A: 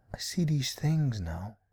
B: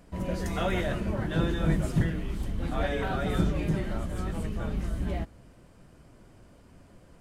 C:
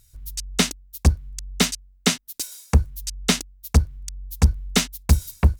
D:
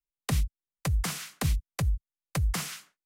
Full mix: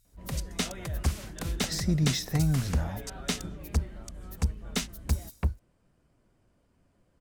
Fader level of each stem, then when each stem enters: +1.5, −14.0, −11.0, −7.5 decibels; 1.50, 0.05, 0.00, 0.00 seconds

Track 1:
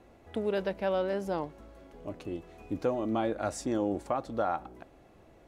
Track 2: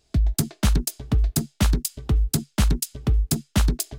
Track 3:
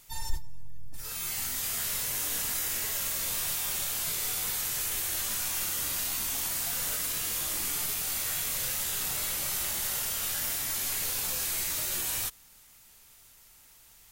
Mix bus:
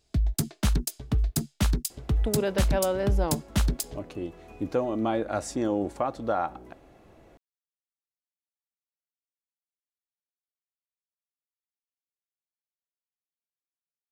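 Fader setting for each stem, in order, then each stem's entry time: +3.0 dB, −4.5 dB, muted; 1.90 s, 0.00 s, muted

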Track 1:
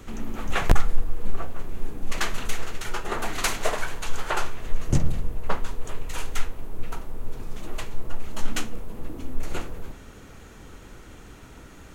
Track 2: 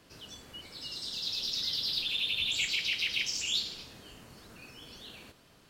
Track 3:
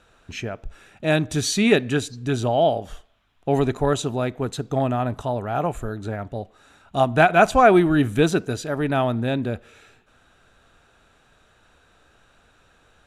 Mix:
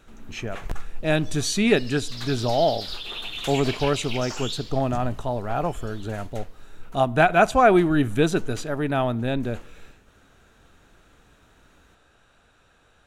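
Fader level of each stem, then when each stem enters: −13.0, −3.0, −2.0 decibels; 0.00, 0.95, 0.00 seconds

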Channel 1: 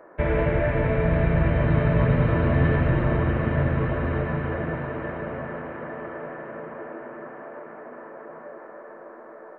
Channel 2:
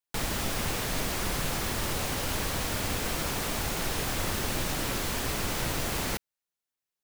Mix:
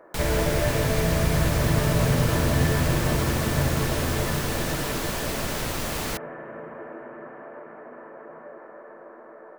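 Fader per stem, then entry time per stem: −2.0, +1.0 decibels; 0.00, 0.00 seconds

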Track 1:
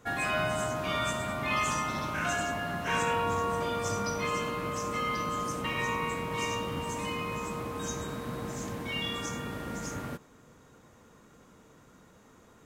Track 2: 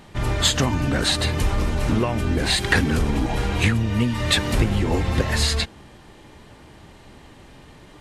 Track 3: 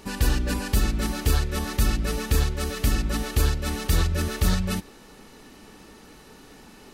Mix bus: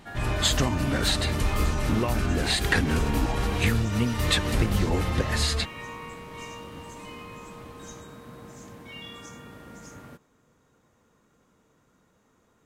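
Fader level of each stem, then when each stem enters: −8.0, −4.5, −9.0 decibels; 0.00, 0.00, 0.30 seconds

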